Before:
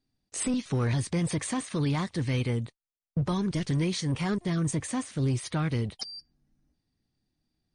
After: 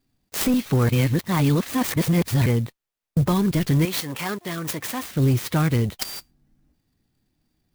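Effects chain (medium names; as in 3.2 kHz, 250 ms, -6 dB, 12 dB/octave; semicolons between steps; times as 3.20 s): 0.89–2.46 s: reverse; 3.85–5.03 s: high-pass 740 Hz 6 dB/octave; sampling jitter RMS 0.035 ms; trim +8 dB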